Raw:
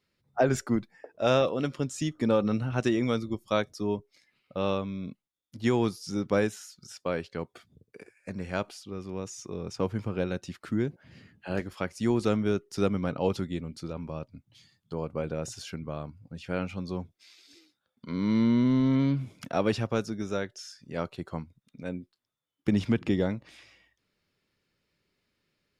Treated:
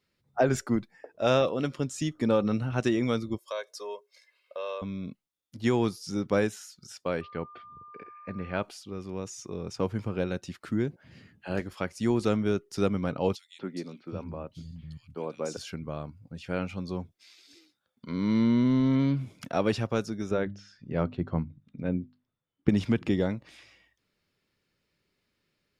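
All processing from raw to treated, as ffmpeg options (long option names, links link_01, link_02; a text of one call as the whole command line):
ffmpeg -i in.wav -filter_complex "[0:a]asettb=1/sr,asplit=3[link_01][link_02][link_03];[link_01]atrim=end=3.384[link_04];[link_02]atrim=start=3.38:end=4.82,asetpts=PTS-STARTPTS,afade=type=in:duration=0.004:curve=qsin,afade=type=out:start_time=1.436:duration=0.004:curve=qsin,highpass=frequency=470:width=0.5412,highpass=frequency=470:width=1.3066,aecho=1:1:1.9:0.97,atrim=end_sample=63504,acompressor=threshold=-35dB:ratio=2.5:attack=3.2:release=140:knee=1:detection=peak[link_05];[link_03]atrim=start=4.816[link_06];[link_04][link_05]acrossfade=duration=0.004:curve1=hsin:curve2=qsin[link_07];[link_07][link_06]acrossfade=duration=0.004:curve1=qsin:curve2=hsin,asettb=1/sr,asplit=3[link_08][link_09][link_10];[link_08]atrim=end=7.214[link_11];[link_09]atrim=start=7.21:end=8.63,asetpts=PTS-STARTPTS,afade=type=in:duration=0.004:curve=qsin,afade=type=out:start_time=1.416:duration=0.004:curve=qsin,lowpass=frequency=3500:width=0.5412,lowpass=frequency=3500:width=1.3066,aeval=exprs='val(0)+0.00501*sin(2*PI*1200*n/s)':channel_layout=same[link_12];[link_10]atrim=start=8.626[link_13];[link_11][link_12]acrossfade=duration=0.004:curve1=hsin:curve2=qsin[link_14];[link_14][link_13]acrossfade=duration=0.004:curve1=qsin:curve2=hsin,asettb=1/sr,asplit=3[link_15][link_16][link_17];[link_15]atrim=end=13.354[link_18];[link_16]atrim=start=13.35:end=15.57,asetpts=PTS-STARTPTS,afade=type=in:duration=0.004:curve=qsin,afade=type=out:start_time=2.216:duration=0.004:curve=qsin,acrossover=split=7700[link_19][link_20];[link_20]acompressor=threshold=-59dB:ratio=4:attack=1:release=60[link_21];[link_19][link_21]amix=inputs=2:normalize=0,acrossover=split=180|2600[link_22][link_23][link_24];[link_23]adelay=240[link_25];[link_22]adelay=740[link_26];[link_26][link_25][link_24]amix=inputs=3:normalize=0,atrim=end_sample=97902[link_27];[link_17]atrim=start=15.566[link_28];[link_18][link_27]acrossfade=duration=0.004:curve1=hsin:curve2=qsin[link_29];[link_29][link_28]acrossfade=duration=0.004:curve1=qsin:curve2=hsin,asettb=1/sr,asplit=3[link_30][link_31][link_32];[link_30]atrim=end=20.314[link_33];[link_31]atrim=start=20.31:end=22.69,asetpts=PTS-STARTPTS,afade=type=in:duration=0.004:curve=qsin,afade=type=out:start_time=2.376:duration=0.004:curve=qsin,lowpass=3000,lowshelf=frequency=350:gain=10,bandreject=frequency=50:width_type=h:width=6,bandreject=frequency=100:width_type=h:width=6,bandreject=frequency=150:width_type=h:width=6,bandreject=frequency=200:width_type=h:width=6,bandreject=frequency=250:width_type=h:width=6,bandreject=frequency=300:width_type=h:width=6[link_34];[link_32]atrim=start=22.686[link_35];[link_33][link_34]acrossfade=duration=0.004:curve1=hsin:curve2=qsin[link_36];[link_36][link_35]acrossfade=duration=0.004:curve1=qsin:curve2=hsin" out.wav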